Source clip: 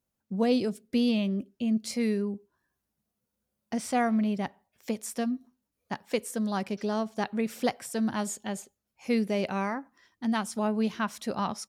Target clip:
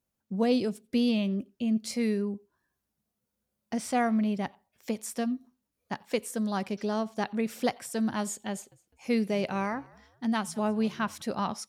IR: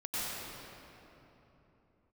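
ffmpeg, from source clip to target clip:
-filter_complex "[0:a]asettb=1/sr,asplit=3[s0][s1][s2];[s0]atrim=end=8.514[s3];[s1]atrim=start=8.51:end=11.22,asetpts=PTS-STARTPTS,afade=t=in:d=0.004:c=qsin,afade=t=out:st=2.706:d=0.004:c=qsin,asplit=3[s4][s5][s6];[s5]adelay=205,afreqshift=-64,volume=0.0631[s7];[s6]adelay=410,afreqshift=-128,volume=0.0245[s8];[s4][s7][s8]amix=inputs=3:normalize=0,atrim=end_sample=119511[s9];[s2]atrim=start=11.216[s10];[s3][s9]acrossfade=d=0.004:c1=hsin:c2=qsin[s11];[s11][s10]acrossfade=d=0.004:c1=qsin:c2=hsin[s12];[1:a]atrim=start_sample=2205,afade=t=out:st=0.13:d=0.01,atrim=end_sample=6174[s13];[s12][s13]afir=irnorm=-1:irlink=0,volume=1.88"

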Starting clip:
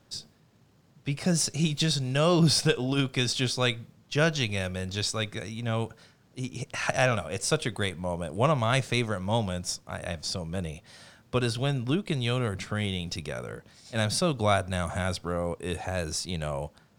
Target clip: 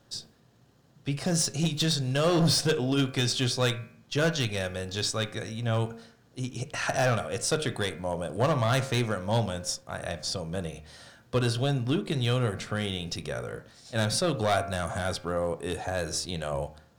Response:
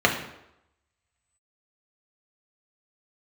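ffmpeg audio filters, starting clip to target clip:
-filter_complex "[0:a]bandreject=f=76.5:t=h:w=4,bandreject=f=153:t=h:w=4,bandreject=f=229.5:t=h:w=4,bandreject=f=306:t=h:w=4,bandreject=f=382.5:t=h:w=4,bandreject=f=459:t=h:w=4,bandreject=f=535.5:t=h:w=4,bandreject=f=612:t=h:w=4,bandreject=f=688.5:t=h:w=4,bandreject=f=765:t=h:w=4,bandreject=f=841.5:t=h:w=4,bandreject=f=918:t=h:w=4,bandreject=f=994.5:t=h:w=4,bandreject=f=1071:t=h:w=4,bandreject=f=1147.5:t=h:w=4,bandreject=f=1224:t=h:w=4,bandreject=f=1300.5:t=h:w=4,bandreject=f=1377:t=h:w=4,bandreject=f=1453.5:t=h:w=4,bandreject=f=1530:t=h:w=4,bandreject=f=1606.5:t=h:w=4,bandreject=f=1683:t=h:w=4,bandreject=f=1759.5:t=h:w=4,bandreject=f=1836:t=h:w=4,bandreject=f=1912.5:t=h:w=4,bandreject=f=1989:t=h:w=4,bandreject=f=2065.5:t=h:w=4,bandreject=f=2142:t=h:w=4,bandreject=f=2218.5:t=h:w=4,bandreject=f=2295:t=h:w=4,bandreject=f=2371.5:t=h:w=4,bandreject=f=2448:t=h:w=4,bandreject=f=2524.5:t=h:w=4,asoftclip=type=hard:threshold=0.0944,asplit=2[s0][s1];[1:a]atrim=start_sample=2205,atrim=end_sample=3528[s2];[s1][s2]afir=irnorm=-1:irlink=0,volume=0.0473[s3];[s0][s3]amix=inputs=2:normalize=0"

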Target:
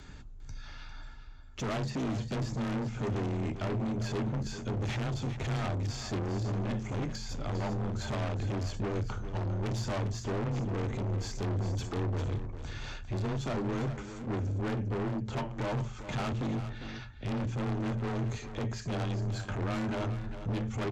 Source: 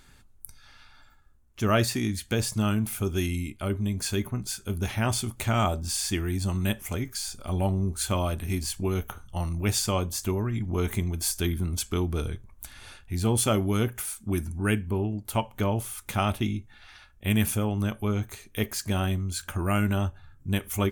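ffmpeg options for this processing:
-filter_complex "[0:a]deesser=0.85,tiltshelf=f=890:g=3.5,bandreject=f=50:t=h:w=6,bandreject=f=100:t=h:w=6,bandreject=f=150:t=h:w=6,bandreject=f=200:t=h:w=6,alimiter=limit=0.168:level=0:latency=1:release=419,acontrast=42,aresample=16000,asoftclip=type=hard:threshold=0.0501,aresample=44100,afreqshift=17,asoftclip=type=tanh:threshold=0.0355,asplit=2[s0][s1];[s1]aecho=0:1:401:0.282[s2];[s0][s2]amix=inputs=2:normalize=0"

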